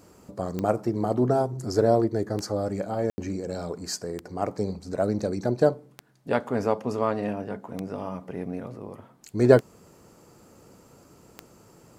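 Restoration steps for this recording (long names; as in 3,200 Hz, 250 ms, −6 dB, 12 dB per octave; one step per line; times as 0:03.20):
click removal
ambience match 0:03.10–0:03.18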